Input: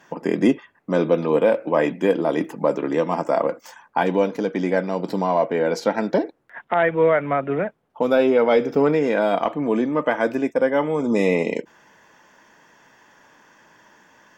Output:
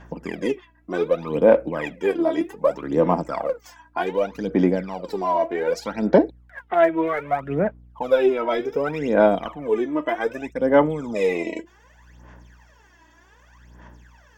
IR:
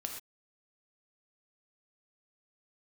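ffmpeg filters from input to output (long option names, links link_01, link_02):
-filter_complex "[0:a]aeval=exprs='val(0)+0.00282*(sin(2*PI*60*n/s)+sin(2*PI*2*60*n/s)/2+sin(2*PI*3*60*n/s)/3+sin(2*PI*4*60*n/s)/4+sin(2*PI*5*60*n/s)/5)':channel_layout=same,aphaser=in_gain=1:out_gain=1:delay=3.1:decay=0.76:speed=0.65:type=sinusoidal,asettb=1/sr,asplit=3[link_01][link_02][link_03];[link_01]atrim=end=8.134[link_04];[link_02]atrim=start=8.13:end=10.87,asetpts=PTS-STARTPTS,afade=type=in:duration=0.004:curve=qsin,afade=type=out:start_time=2.736:duration=0.004:curve=qsin,asuperstop=centerf=4500:order=4:qfactor=7[link_05];[link_03]atrim=start=10.866[link_06];[link_04][link_05]acrossfade=duration=0.004:curve1=hsin:curve2=qsin[link_07];[link_07][link_06]acrossfade=duration=0.004:curve1=qsin:curve2=hsin,volume=-6.5dB"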